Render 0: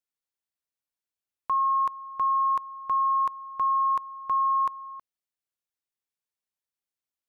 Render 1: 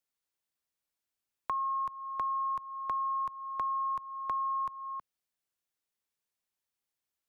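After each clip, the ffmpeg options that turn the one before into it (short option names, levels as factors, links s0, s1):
-filter_complex "[0:a]acrossover=split=170[s0][s1];[s1]acompressor=threshold=0.0158:ratio=4[s2];[s0][s2]amix=inputs=2:normalize=0,volume=1.33"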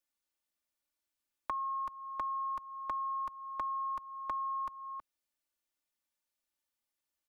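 -af "aecho=1:1:3.4:0.65,volume=0.794"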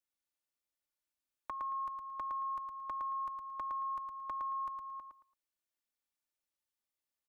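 -af "aecho=1:1:112|224|336:0.562|0.135|0.0324,volume=0.501"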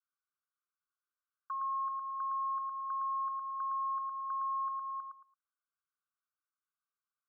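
-af "asoftclip=type=tanh:threshold=0.0126,asuperpass=centerf=1300:order=20:qfactor=2.2,volume=2.11"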